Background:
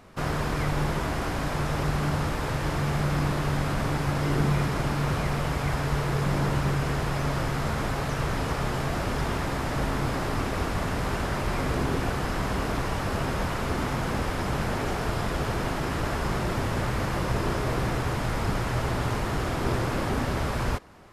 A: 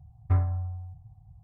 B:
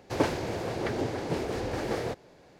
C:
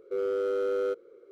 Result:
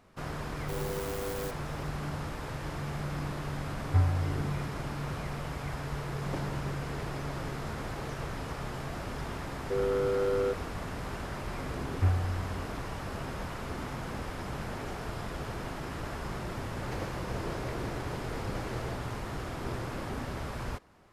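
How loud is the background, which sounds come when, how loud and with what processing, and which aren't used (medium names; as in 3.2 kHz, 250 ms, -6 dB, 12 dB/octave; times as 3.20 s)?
background -9.5 dB
0.57 s: add C -9 dB + sampling jitter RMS 0.13 ms
3.64 s: add A -1 dB
6.13 s: add B -14.5 dB
9.59 s: add C -0.5 dB
11.72 s: add A -2.5 dB
16.82 s: add B -11 dB + three bands compressed up and down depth 100%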